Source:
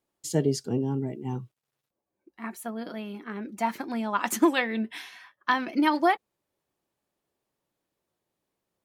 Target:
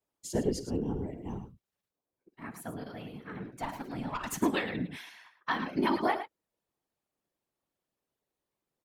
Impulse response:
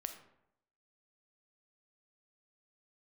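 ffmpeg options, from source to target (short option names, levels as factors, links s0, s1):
-filter_complex "[0:a]asettb=1/sr,asplit=3[s0][s1][s2];[s0]atrim=end=3.474[s3];[s1]atrim=start=3.47:end=4.41,asetpts=PTS-STARTPTS,afade=t=in:d=0.004:c=qsin,afade=t=out:st=0.936:d=0.004:c=qsin,aeval=exprs='(tanh(8.91*val(0)+0.4)-tanh(0.4))/8.91':c=same[s4];[s2]atrim=start=4.406[s5];[s3][s4]acrossfade=d=0.004:c1=hsin:c2=qsin[s6];[s6][s5]acrossfade=d=0.004:c1=qsin:c2=hsin,aecho=1:1:51|108:0.158|0.299,afftfilt=real='hypot(re,im)*cos(2*PI*random(0))':imag='hypot(re,im)*sin(2*PI*random(1))':win_size=512:overlap=0.75"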